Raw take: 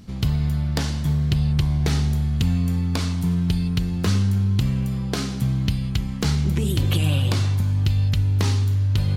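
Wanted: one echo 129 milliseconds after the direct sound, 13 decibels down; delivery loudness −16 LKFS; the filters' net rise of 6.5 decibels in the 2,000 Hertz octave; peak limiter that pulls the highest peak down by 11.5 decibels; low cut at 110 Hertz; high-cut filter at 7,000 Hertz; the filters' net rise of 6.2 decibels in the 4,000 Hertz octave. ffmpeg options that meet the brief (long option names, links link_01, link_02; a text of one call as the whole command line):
ffmpeg -i in.wav -af "highpass=110,lowpass=7000,equalizer=frequency=2000:width_type=o:gain=6.5,equalizer=frequency=4000:width_type=o:gain=6,alimiter=limit=-15dB:level=0:latency=1,aecho=1:1:129:0.224,volume=9dB" out.wav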